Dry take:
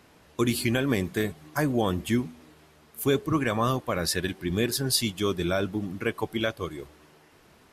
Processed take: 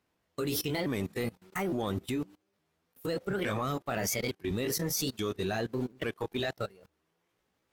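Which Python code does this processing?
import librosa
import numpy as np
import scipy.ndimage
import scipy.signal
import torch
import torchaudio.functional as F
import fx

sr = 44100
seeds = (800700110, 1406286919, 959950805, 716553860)

y = fx.pitch_ramps(x, sr, semitones=5.0, every_ms=862)
y = fx.level_steps(y, sr, step_db=17)
y = fx.leveller(y, sr, passes=1)
y = fx.upward_expand(y, sr, threshold_db=-47.0, expansion=1.5)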